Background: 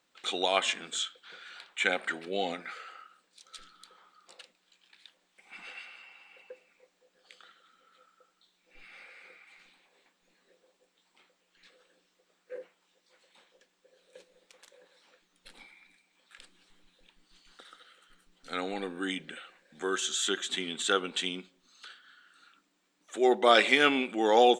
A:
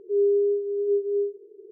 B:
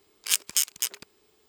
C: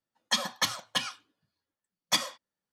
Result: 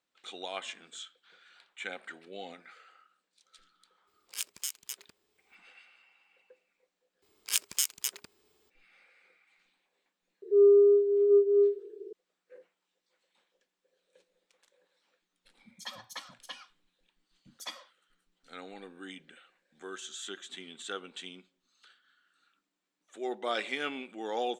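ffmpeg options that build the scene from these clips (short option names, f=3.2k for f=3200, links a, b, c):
-filter_complex "[2:a]asplit=2[a][b];[0:a]volume=-11.5dB[c];[1:a]acontrast=81[d];[3:a]acrossover=split=260|5600[e][f][g];[g]adelay=150[h];[f]adelay=210[i];[e][i][h]amix=inputs=3:normalize=0[j];[c]asplit=2[k][l];[k]atrim=end=7.224[m];[b]atrim=end=1.48,asetpts=PTS-STARTPTS,volume=-5dB[n];[l]atrim=start=8.696[o];[a]atrim=end=1.48,asetpts=PTS-STARTPTS,volume=-12.5dB,afade=t=in:d=0.004:c=hsin,afade=t=out:st=1.476:d=0.004:c=hsin,adelay=4070[p];[d]atrim=end=1.71,asetpts=PTS-STARTPTS,volume=-5dB,afade=t=in:d=0.004:c=hsin,afade=t=out:st=1.706:d=0.004:c=hsin,adelay=459522S[q];[j]atrim=end=2.72,asetpts=PTS-STARTPTS,volume=-13.5dB,afade=t=in:d=0.004:c=hsin,afade=t=out:st=2.716:d=0.004:c=hsin,adelay=15330[r];[m][n]acrossfade=d=0.004:c1=hsin:c2=hsin[s];[s][o]acrossfade=d=0.004:c1=hsin:c2=hsin[t];[t][p][q][r]amix=inputs=4:normalize=0"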